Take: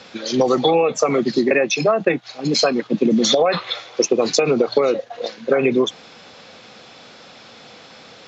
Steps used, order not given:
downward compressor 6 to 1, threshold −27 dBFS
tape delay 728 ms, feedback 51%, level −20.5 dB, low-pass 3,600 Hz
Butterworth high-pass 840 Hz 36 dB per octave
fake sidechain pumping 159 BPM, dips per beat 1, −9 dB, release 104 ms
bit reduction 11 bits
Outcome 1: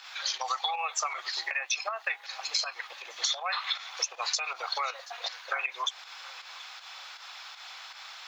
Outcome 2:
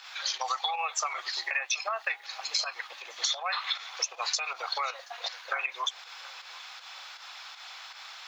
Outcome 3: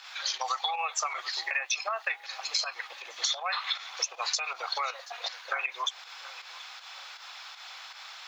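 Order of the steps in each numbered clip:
tape delay, then Butterworth high-pass, then bit reduction, then downward compressor, then fake sidechain pumping
Butterworth high-pass, then bit reduction, then fake sidechain pumping, then downward compressor, then tape delay
bit reduction, then Butterworth high-pass, then tape delay, then fake sidechain pumping, then downward compressor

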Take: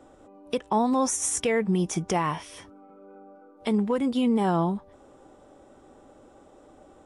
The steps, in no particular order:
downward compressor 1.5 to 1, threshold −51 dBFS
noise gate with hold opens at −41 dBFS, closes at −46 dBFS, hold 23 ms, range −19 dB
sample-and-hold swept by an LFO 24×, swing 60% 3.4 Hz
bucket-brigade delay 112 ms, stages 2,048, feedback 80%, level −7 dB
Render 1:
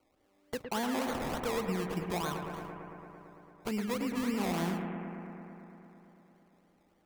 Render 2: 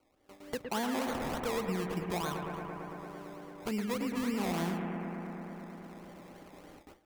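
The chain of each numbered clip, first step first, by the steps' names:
downward compressor, then noise gate with hold, then sample-and-hold swept by an LFO, then bucket-brigade delay
sample-and-hold swept by an LFO, then bucket-brigade delay, then noise gate with hold, then downward compressor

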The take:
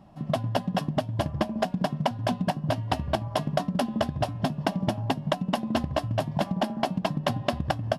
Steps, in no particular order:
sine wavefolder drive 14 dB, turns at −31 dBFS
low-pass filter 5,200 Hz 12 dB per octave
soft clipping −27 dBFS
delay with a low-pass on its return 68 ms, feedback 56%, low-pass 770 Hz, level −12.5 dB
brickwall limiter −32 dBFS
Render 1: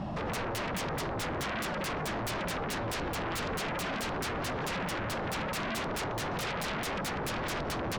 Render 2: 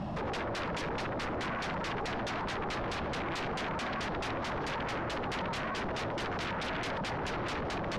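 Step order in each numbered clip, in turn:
low-pass filter, then soft clipping, then brickwall limiter, then delay with a low-pass on its return, then sine wavefolder
delay with a low-pass on its return, then brickwall limiter, then sine wavefolder, then soft clipping, then low-pass filter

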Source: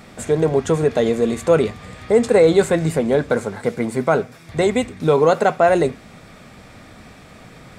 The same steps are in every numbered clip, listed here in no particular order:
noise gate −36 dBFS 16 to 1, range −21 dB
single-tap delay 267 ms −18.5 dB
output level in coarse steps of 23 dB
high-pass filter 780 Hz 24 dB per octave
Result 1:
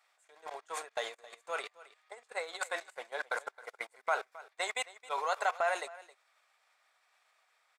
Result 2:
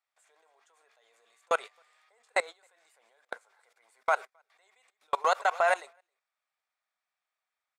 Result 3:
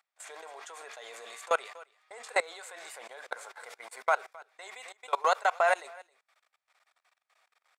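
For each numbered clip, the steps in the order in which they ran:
output level in coarse steps, then high-pass filter, then noise gate, then single-tap delay
high-pass filter, then output level in coarse steps, then single-tap delay, then noise gate
high-pass filter, then noise gate, then single-tap delay, then output level in coarse steps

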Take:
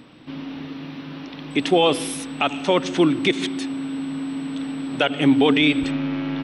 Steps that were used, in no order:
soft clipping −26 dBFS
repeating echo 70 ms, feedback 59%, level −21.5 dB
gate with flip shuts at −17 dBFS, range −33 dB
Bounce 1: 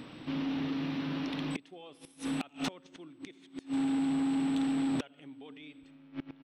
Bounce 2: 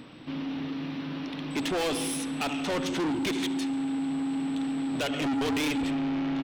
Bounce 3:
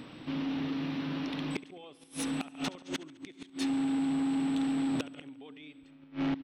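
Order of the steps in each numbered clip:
repeating echo, then gate with flip, then soft clipping
repeating echo, then soft clipping, then gate with flip
gate with flip, then repeating echo, then soft clipping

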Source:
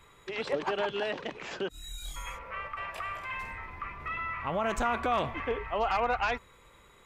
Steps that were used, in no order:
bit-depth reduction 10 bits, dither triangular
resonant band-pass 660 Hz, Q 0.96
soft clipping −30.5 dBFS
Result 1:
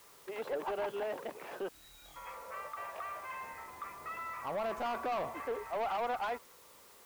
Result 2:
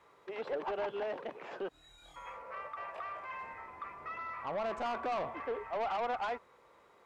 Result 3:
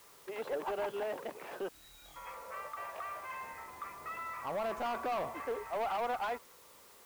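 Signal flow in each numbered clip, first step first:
resonant band-pass, then bit-depth reduction, then soft clipping
bit-depth reduction, then resonant band-pass, then soft clipping
resonant band-pass, then soft clipping, then bit-depth reduction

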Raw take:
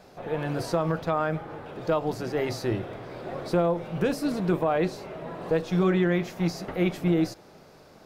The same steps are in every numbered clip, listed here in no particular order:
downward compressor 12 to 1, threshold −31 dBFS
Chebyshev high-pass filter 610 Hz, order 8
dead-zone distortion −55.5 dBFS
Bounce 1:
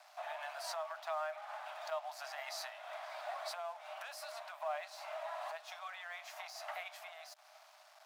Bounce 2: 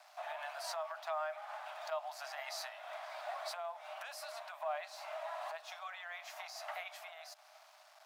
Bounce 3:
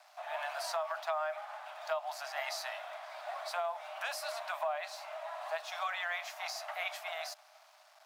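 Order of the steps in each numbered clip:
downward compressor, then dead-zone distortion, then Chebyshev high-pass filter
dead-zone distortion, then downward compressor, then Chebyshev high-pass filter
dead-zone distortion, then Chebyshev high-pass filter, then downward compressor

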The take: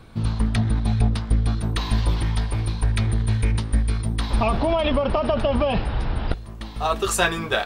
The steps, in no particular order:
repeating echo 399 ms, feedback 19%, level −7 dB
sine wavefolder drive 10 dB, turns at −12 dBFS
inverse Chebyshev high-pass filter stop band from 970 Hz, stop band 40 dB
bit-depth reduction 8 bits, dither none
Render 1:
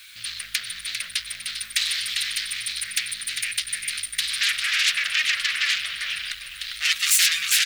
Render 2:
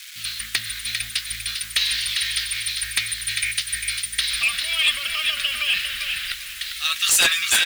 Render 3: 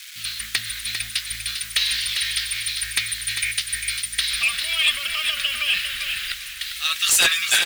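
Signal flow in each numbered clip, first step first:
repeating echo, then sine wavefolder, then bit-depth reduction, then inverse Chebyshev high-pass filter
repeating echo, then bit-depth reduction, then inverse Chebyshev high-pass filter, then sine wavefolder
bit-depth reduction, then inverse Chebyshev high-pass filter, then sine wavefolder, then repeating echo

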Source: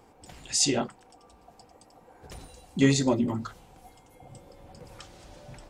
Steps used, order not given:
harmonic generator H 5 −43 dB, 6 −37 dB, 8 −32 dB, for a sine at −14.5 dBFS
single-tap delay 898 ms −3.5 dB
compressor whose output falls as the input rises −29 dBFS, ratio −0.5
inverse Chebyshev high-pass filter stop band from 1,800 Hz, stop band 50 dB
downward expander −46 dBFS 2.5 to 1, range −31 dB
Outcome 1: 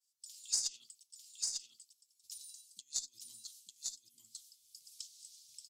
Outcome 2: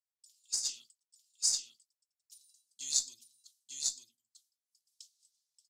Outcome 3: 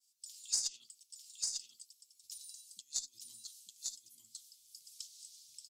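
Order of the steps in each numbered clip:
downward expander, then compressor whose output falls as the input rises, then inverse Chebyshev high-pass filter, then harmonic generator, then single-tap delay
inverse Chebyshev high-pass filter, then downward expander, then single-tap delay, then compressor whose output falls as the input rises, then harmonic generator
compressor whose output falls as the input rises, then single-tap delay, then downward expander, then inverse Chebyshev high-pass filter, then harmonic generator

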